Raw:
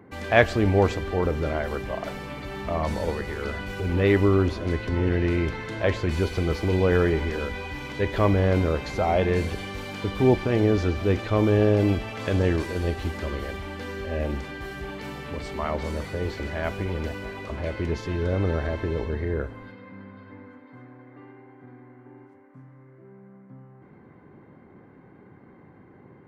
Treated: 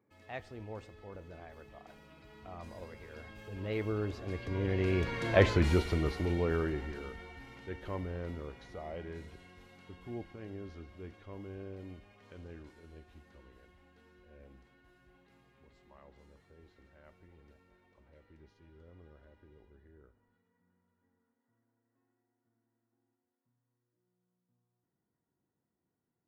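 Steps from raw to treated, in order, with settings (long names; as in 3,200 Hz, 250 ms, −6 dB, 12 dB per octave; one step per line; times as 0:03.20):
source passing by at 0:05.43, 29 m/s, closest 8.8 metres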